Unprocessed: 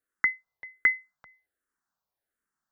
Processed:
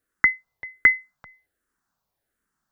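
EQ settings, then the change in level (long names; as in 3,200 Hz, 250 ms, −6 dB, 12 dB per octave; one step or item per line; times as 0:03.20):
low-shelf EQ 270 Hz +8 dB
+6.5 dB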